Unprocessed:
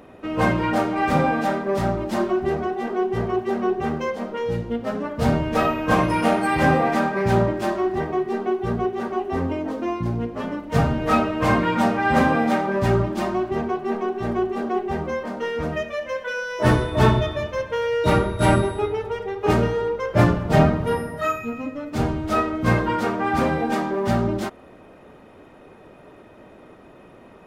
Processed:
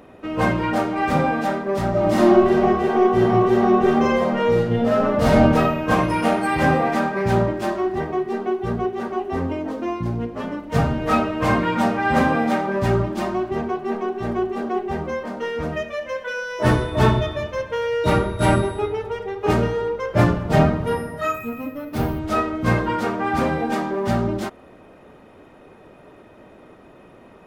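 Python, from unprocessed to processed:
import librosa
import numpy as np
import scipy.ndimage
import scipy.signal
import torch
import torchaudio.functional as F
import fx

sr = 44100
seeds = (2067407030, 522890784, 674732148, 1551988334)

y = fx.reverb_throw(x, sr, start_s=1.9, length_s=3.52, rt60_s=1.0, drr_db=-6.0)
y = fx.resample_bad(y, sr, factor=3, down='filtered', up='hold', at=(21.34, 22.19))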